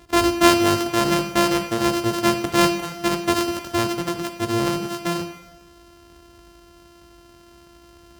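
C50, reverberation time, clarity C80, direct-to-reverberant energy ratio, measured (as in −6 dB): 10.0 dB, 1.0 s, 12.0 dB, 7.5 dB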